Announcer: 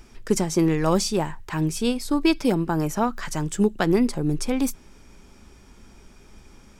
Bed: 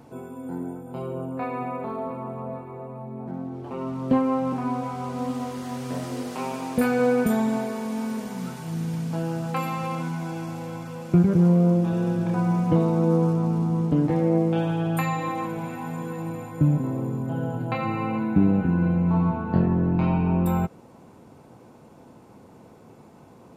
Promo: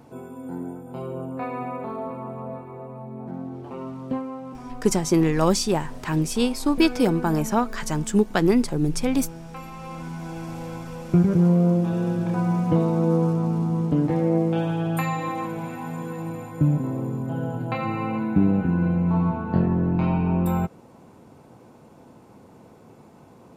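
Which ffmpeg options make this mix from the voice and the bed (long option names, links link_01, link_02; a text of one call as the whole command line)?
ffmpeg -i stem1.wav -i stem2.wav -filter_complex "[0:a]adelay=4550,volume=1dB[link_01];[1:a]volume=10.5dB,afade=type=out:start_time=3.55:duration=0.77:silence=0.298538,afade=type=in:start_time=9.71:duration=0.94:silence=0.281838[link_02];[link_01][link_02]amix=inputs=2:normalize=0" out.wav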